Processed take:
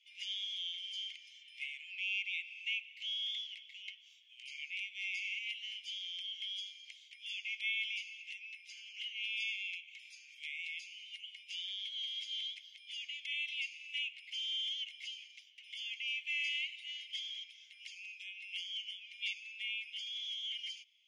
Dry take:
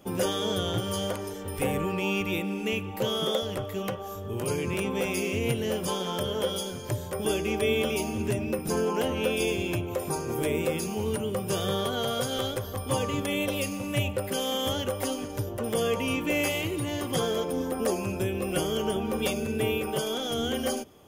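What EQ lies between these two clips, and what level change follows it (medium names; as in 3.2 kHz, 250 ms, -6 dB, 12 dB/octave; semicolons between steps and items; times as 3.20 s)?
rippled Chebyshev high-pass 2.1 kHz, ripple 6 dB; low-pass 7.1 kHz 12 dB/octave; distance through air 260 m; +4.0 dB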